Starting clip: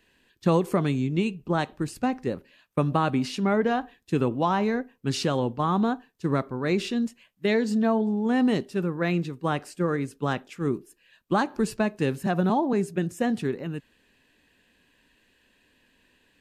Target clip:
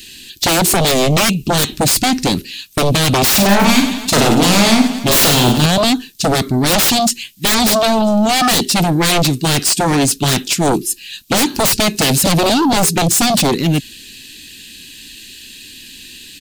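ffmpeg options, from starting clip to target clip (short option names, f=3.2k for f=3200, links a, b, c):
-filter_complex "[0:a]firequalizer=gain_entry='entry(340,0);entry(580,-20);entry(2400,4);entry(4000,15)':delay=0.05:min_phase=1,aeval=exprs='0.376*sin(PI/2*8.91*val(0)/0.376)':c=same,asettb=1/sr,asplit=3[a][b][c];[a]atrim=end=3.314[d];[b]atrim=start=3.31:end=5.66,asetpts=PTS-STARTPTS,afade=t=in:d=0.004:c=qsin,afade=t=out:st=2.346:d=0.004:c=qsin,aecho=1:1:40|96|174.4|284.2|437.8:0.631|0.398|0.251|0.158|0.1,atrim=end_sample=103635[e];[c]atrim=start=5.656[f];[d][e]acrossfade=d=0.004:c1=hsin:c2=qsin[g];[g][f]acrossfade=d=0.004:c1=qsin:c2=hsin,volume=-1dB"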